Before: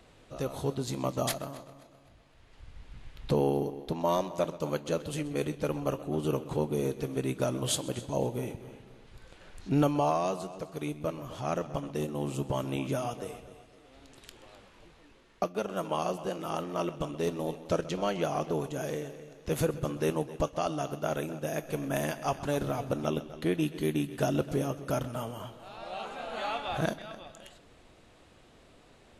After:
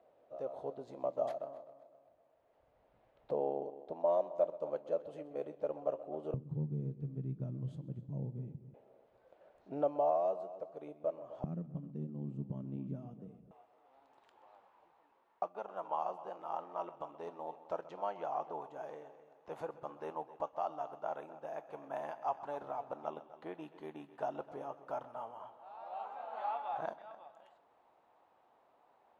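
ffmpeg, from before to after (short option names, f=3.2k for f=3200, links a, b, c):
-af "asetnsamples=n=441:p=0,asendcmd='6.34 bandpass f 150;8.74 bandpass f 620;11.44 bandpass f 180;13.51 bandpass f 860',bandpass=f=620:t=q:w=3.6:csg=0"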